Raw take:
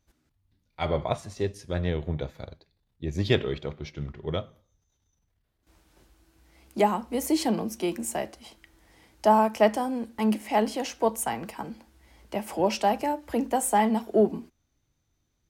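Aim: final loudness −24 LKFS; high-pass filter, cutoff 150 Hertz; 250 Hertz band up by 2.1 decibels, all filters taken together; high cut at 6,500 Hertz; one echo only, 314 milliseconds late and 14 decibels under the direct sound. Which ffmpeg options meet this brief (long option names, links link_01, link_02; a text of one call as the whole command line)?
ffmpeg -i in.wav -af "highpass=150,lowpass=6500,equalizer=frequency=250:width_type=o:gain=3.5,aecho=1:1:314:0.2,volume=2.5dB" out.wav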